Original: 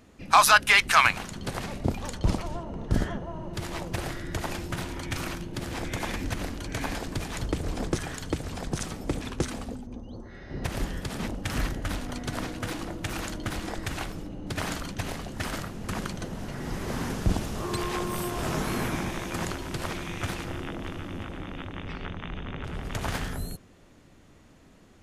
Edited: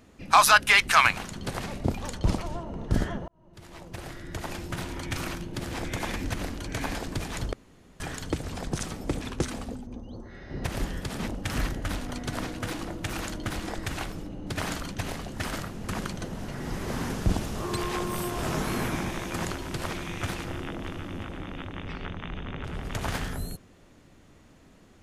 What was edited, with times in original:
3.28–4.96 s: fade in
7.53–8.00 s: room tone

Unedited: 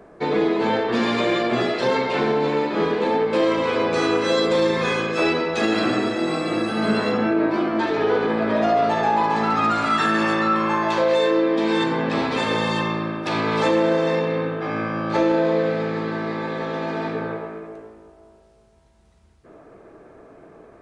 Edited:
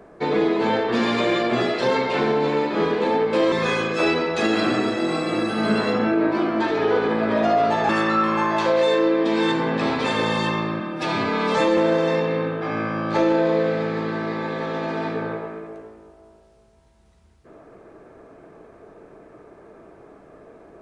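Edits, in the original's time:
3.52–4.71 s: delete
9.08–10.21 s: delete
13.12–13.77 s: stretch 1.5×

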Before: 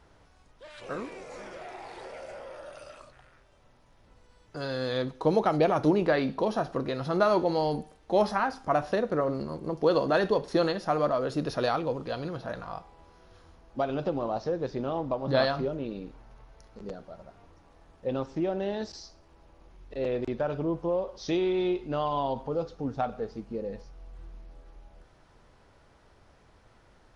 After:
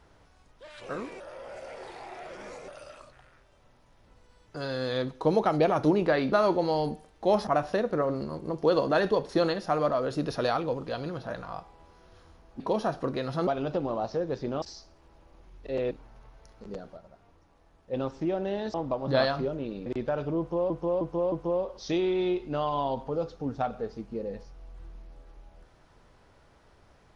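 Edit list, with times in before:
1.20–2.68 s: reverse
6.32–7.19 s: move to 13.79 s
8.34–8.66 s: delete
14.94–16.06 s: swap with 18.89–20.18 s
17.12–18.08 s: gain -5 dB
20.71–21.02 s: loop, 4 plays

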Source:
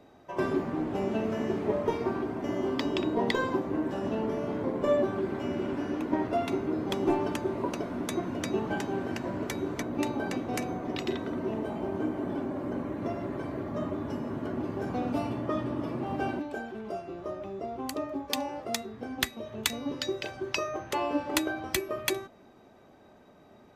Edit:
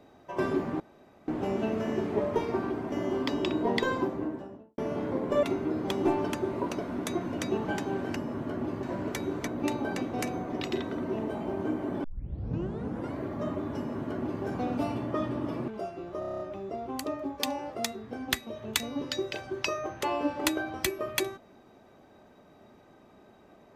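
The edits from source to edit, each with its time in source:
0.80 s: insert room tone 0.48 s
3.48–4.30 s: studio fade out
4.95–6.45 s: delete
12.39 s: tape start 1.12 s
14.12–14.79 s: copy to 9.18 s
16.03–16.79 s: delete
17.30 s: stutter 0.03 s, 8 plays

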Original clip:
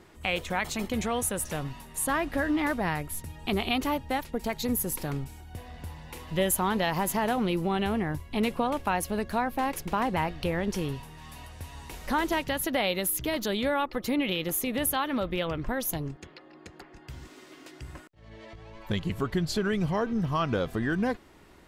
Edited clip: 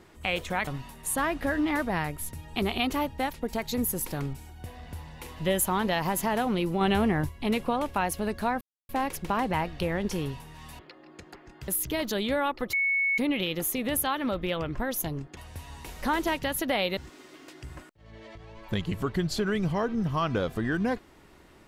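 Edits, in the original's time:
0.67–1.58 s: delete
7.72–8.20 s: gain +4 dB
9.52 s: insert silence 0.28 s
11.42–13.02 s: swap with 16.26–17.15 s
14.07 s: add tone 2.21 kHz -22.5 dBFS 0.45 s

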